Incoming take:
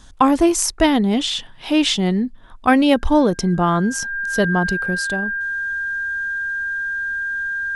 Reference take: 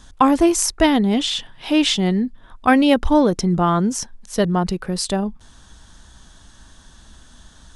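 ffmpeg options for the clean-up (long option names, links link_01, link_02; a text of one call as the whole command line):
ffmpeg -i in.wav -af "bandreject=frequency=1600:width=30,asetnsamples=nb_out_samples=441:pad=0,asendcmd='4.95 volume volume 5dB',volume=0dB" out.wav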